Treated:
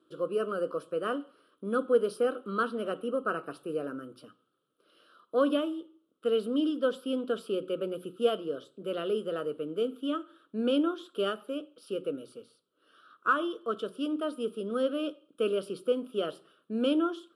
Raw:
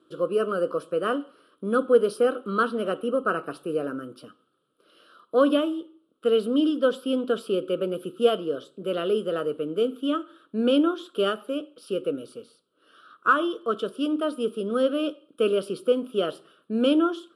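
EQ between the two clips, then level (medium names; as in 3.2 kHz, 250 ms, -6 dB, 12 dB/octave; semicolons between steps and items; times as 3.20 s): hum notches 60/120/180 Hz; -6.0 dB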